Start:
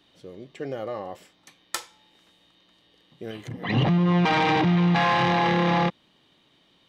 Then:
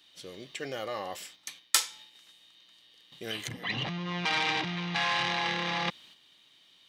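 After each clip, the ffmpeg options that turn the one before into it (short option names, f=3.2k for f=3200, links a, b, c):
-af "areverse,acompressor=threshold=-29dB:ratio=12,areverse,agate=range=-7dB:threshold=-58dB:ratio=16:detection=peak,tiltshelf=f=1.4k:g=-9.5,volume=4dB"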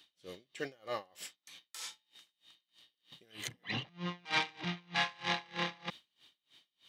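-af "aeval=exprs='val(0)*pow(10,-30*(0.5-0.5*cos(2*PI*3.2*n/s))/20)':c=same"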